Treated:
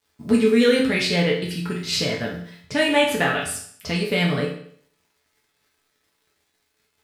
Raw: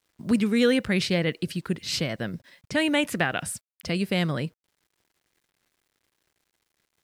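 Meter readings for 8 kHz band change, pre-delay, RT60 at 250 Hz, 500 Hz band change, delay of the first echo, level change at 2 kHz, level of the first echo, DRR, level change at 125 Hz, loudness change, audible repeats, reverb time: +4.5 dB, 5 ms, 0.60 s, +7.0 dB, no echo, +5.0 dB, no echo, -4.5 dB, +2.5 dB, +4.5 dB, no echo, 0.60 s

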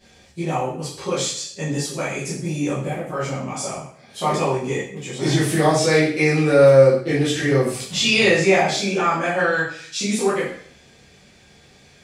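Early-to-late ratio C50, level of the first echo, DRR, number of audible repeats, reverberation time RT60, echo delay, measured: 3.5 dB, no echo, -10.5 dB, no echo, 0.60 s, no echo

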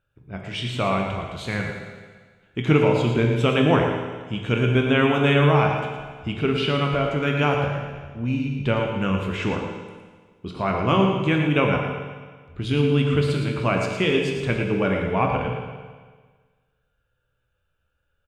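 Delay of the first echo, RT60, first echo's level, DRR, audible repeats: 114 ms, 1.5 s, -7.0 dB, 0.5 dB, 1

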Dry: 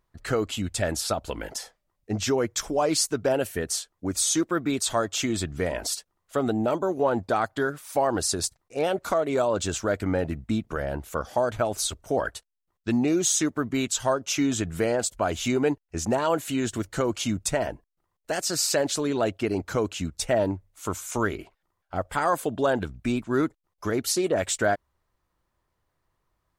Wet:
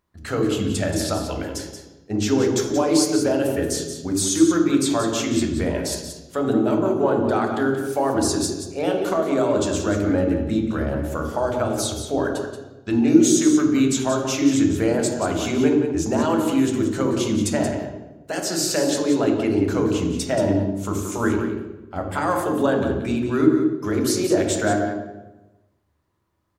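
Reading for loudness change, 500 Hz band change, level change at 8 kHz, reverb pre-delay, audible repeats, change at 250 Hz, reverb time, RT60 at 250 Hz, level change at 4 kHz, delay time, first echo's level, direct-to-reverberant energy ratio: +5.5 dB, +4.0 dB, +1.5 dB, 3 ms, 1, +9.0 dB, 1.1 s, 1.3 s, +1.5 dB, 179 ms, -9.0 dB, 1.0 dB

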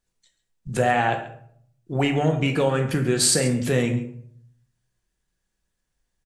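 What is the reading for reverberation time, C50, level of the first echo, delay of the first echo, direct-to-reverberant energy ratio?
0.60 s, 9.0 dB, -17.0 dB, 136 ms, 3.5 dB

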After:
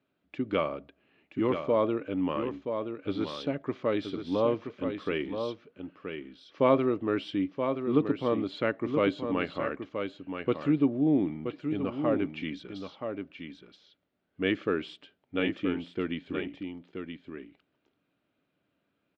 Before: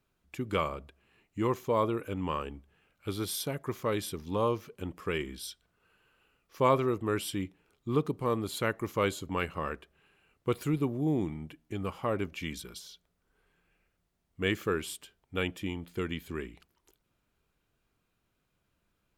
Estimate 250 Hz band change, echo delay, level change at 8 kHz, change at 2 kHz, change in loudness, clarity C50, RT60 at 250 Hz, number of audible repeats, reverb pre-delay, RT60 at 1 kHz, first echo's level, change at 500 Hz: +5.5 dB, 976 ms, under -20 dB, +0.5 dB, +2.5 dB, no reverb, no reverb, 1, no reverb, no reverb, -7.0 dB, +3.5 dB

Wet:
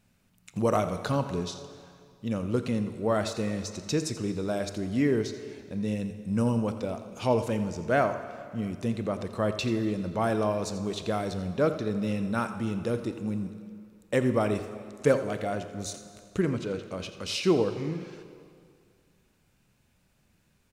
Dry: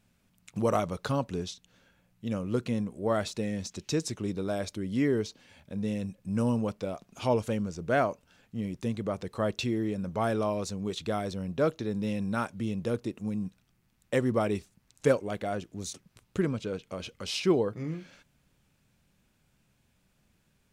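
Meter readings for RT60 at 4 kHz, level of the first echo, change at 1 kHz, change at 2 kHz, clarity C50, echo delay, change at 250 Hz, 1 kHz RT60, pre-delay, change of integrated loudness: 1.9 s, -14.5 dB, +2.0 dB, +2.0 dB, 9.5 dB, 85 ms, +2.0 dB, 2.3 s, 24 ms, +2.0 dB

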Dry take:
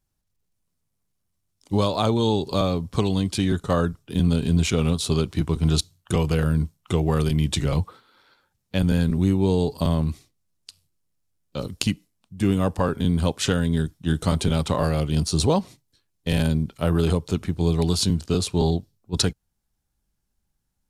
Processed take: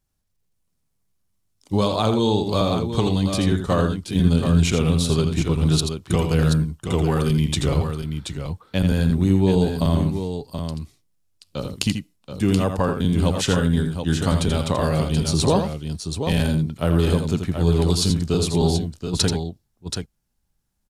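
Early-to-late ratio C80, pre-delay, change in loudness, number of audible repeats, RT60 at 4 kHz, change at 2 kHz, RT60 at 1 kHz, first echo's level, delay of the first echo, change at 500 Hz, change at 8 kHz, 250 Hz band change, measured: no reverb, no reverb, +2.0 dB, 2, no reverb, +2.5 dB, no reverb, -7.5 dB, 83 ms, +2.5 dB, +2.5 dB, +2.5 dB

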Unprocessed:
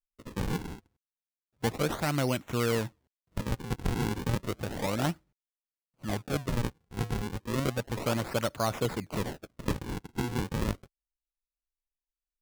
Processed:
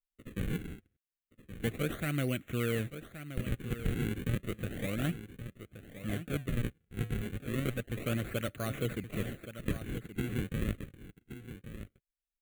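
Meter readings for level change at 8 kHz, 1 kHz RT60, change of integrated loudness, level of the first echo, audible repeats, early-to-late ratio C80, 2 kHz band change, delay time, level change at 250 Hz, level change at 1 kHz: -7.5 dB, no reverb, -4.0 dB, -11.5 dB, 1, no reverb, -3.0 dB, 1123 ms, -2.5 dB, -12.0 dB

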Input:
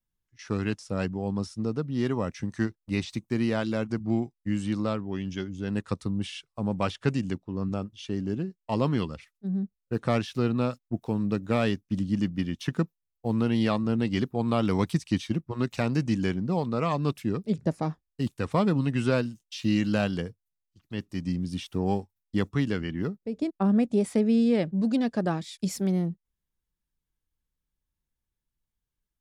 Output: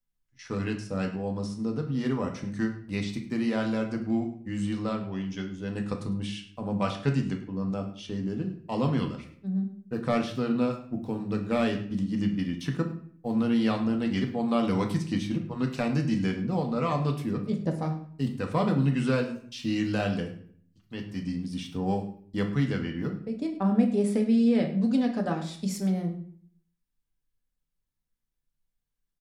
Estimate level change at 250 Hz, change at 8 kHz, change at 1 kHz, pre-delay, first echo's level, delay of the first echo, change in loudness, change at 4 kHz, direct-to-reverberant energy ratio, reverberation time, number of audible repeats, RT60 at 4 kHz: 0.0 dB, no reading, -0.5 dB, 4 ms, -16.5 dB, 103 ms, -0.5 dB, -1.5 dB, 2.5 dB, 0.55 s, 1, 0.40 s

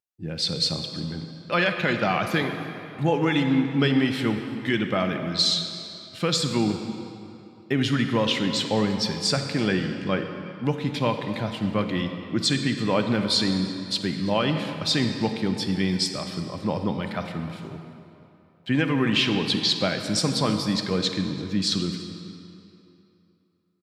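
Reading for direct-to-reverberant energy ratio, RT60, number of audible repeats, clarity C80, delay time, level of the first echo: 6.0 dB, 3.0 s, 1, 7.0 dB, 338 ms, -21.5 dB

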